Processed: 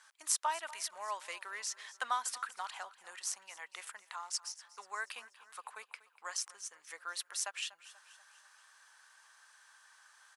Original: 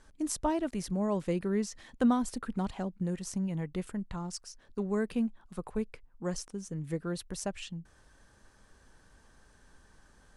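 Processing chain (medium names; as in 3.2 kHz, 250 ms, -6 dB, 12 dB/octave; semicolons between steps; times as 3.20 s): high-pass 1 kHz 24 dB/octave; feedback delay 242 ms, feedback 51%, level -18 dB; trim +4.5 dB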